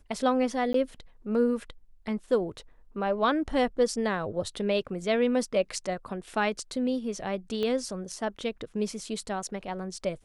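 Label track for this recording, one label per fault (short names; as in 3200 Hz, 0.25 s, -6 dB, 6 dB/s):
0.730000	0.740000	gap 13 ms
7.630000	7.630000	pop -20 dBFS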